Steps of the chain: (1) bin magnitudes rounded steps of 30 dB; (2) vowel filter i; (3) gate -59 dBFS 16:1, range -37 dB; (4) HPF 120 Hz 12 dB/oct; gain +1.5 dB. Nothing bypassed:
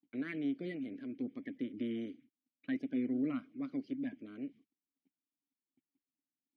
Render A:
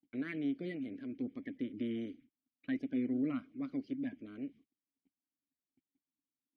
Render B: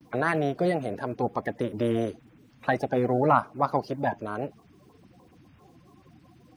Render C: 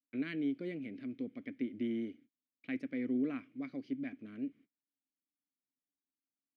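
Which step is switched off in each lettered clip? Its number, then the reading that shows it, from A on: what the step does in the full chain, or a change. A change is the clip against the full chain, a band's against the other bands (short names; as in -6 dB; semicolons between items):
4, 125 Hz band +2.0 dB; 2, 250 Hz band -14.5 dB; 1, momentary loudness spread change -2 LU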